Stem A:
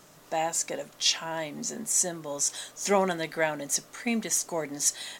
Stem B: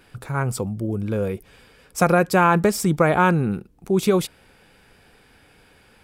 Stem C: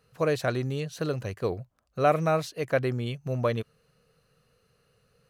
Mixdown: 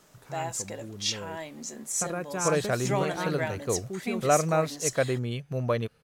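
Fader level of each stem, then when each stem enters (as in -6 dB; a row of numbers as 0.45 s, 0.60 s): -5.0 dB, -16.5 dB, -0.5 dB; 0.00 s, 0.00 s, 2.25 s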